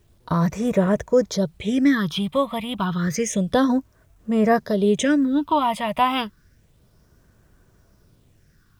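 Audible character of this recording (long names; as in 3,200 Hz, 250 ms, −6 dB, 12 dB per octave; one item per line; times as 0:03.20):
phaser sweep stages 6, 0.3 Hz, lowest notch 410–4,200 Hz
a quantiser's noise floor 12 bits, dither none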